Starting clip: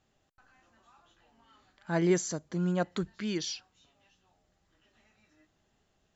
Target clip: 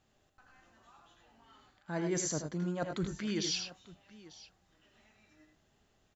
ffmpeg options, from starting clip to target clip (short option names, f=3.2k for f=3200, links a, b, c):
-af "agate=range=-7dB:threshold=-57dB:ratio=16:detection=peak,areverse,acompressor=threshold=-41dB:ratio=5,areverse,aecho=1:1:81|101|894:0.422|0.355|0.112,volume=7.5dB"